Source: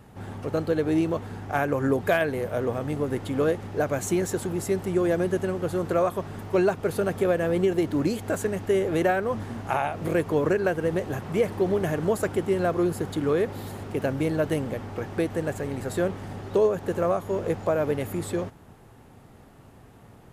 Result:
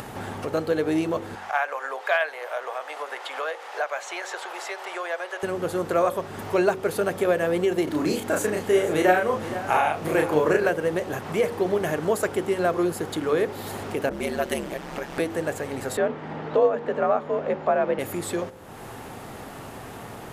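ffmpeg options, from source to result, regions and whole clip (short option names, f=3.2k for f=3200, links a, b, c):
-filter_complex "[0:a]asettb=1/sr,asplit=3[a][b][c];[a]atrim=end=1.354[d];[b]atrim=start=1.35:end=5.43,asetpts=PTS-STARTPTS,afade=t=in:d=0.004:c=qsin,afade=t=out:st=4.076:d=0.004:c=qsin,acrossover=split=5100[e][f];[f]acompressor=threshold=-55dB:ratio=4:attack=1:release=60[g];[e][g]amix=inputs=2:normalize=0,highpass=f=670:w=0.5412,highpass=f=670:w=1.3066,highshelf=f=8.9k:g=-9[h];[c]atrim=start=5.426[i];[d][h]acrossfade=d=0.004:c1=hsin:c2=qsin[j];[j][i]acrossfade=d=0.004:c1=qsin:c2=hsin,asettb=1/sr,asplit=3[k][l][m];[k]atrim=end=7.844[n];[l]atrim=start=7.84:end=10.69,asetpts=PTS-STARTPTS,afade=t=in:d=0.004:c=qsin,afade=t=out:st=2.846:d=0.004:c=qsin,asplit=2[o][p];[p]adelay=33,volume=-3dB[q];[o][q]amix=inputs=2:normalize=0,atrim=end_sample=125685,aecho=1:1:469:0.2,atrim=end_sample=125685[r];[m]atrim=start=10.686[s];[n][r]acrossfade=d=0.004:c1=hsin:c2=qsin[t];[t][s]acrossfade=d=0.004:c1=qsin:c2=hsin,asettb=1/sr,asplit=3[u][v][w];[u]atrim=end=14.094[x];[v]atrim=start=14.09:end=15.2,asetpts=PTS-STARTPTS,afade=t=in:d=0.004:c=qsin,afade=t=out:st=1.106:d=0.004:c=qsin,aeval=exprs='val(0)*sin(2*PI*68*n/s)':c=same,adynamicequalizer=threshold=0.00794:dfrequency=1600:dqfactor=0.7:tfrequency=1600:tqfactor=0.7:attack=5:release=100:ratio=0.375:range=2.5:mode=boostabove:tftype=highshelf[y];[w]atrim=start=15.196[z];[x][y]acrossfade=d=0.004:c1=hsin:c2=qsin[aa];[aa][z]acrossfade=d=0.004:c1=qsin:c2=hsin,asettb=1/sr,asplit=3[ab][ac][ad];[ab]atrim=end=15.974[ae];[ac]atrim=start=15.97:end=17.99,asetpts=PTS-STARTPTS,afade=t=in:d=0.004:c=qsin,afade=t=out:st=2.016:d=0.004:c=qsin,lowpass=2.7k,afreqshift=55[af];[ad]atrim=start=17.986[ag];[ae][af]acrossfade=d=0.004:c1=hsin:c2=qsin[ah];[ah][ag]acrossfade=d=0.004:c1=qsin:c2=hsin,lowshelf=f=220:g=-12,bandreject=f=47.18:t=h:w=4,bandreject=f=94.36:t=h:w=4,bandreject=f=141.54:t=h:w=4,bandreject=f=188.72:t=h:w=4,bandreject=f=235.9:t=h:w=4,bandreject=f=283.08:t=h:w=4,bandreject=f=330.26:t=h:w=4,bandreject=f=377.44:t=h:w=4,bandreject=f=424.62:t=h:w=4,bandreject=f=471.8:t=h:w=4,bandreject=f=518.98:t=h:w=4,bandreject=f=566.16:t=h:w=4,acompressor=mode=upward:threshold=-30dB:ratio=2.5,volume=4dB"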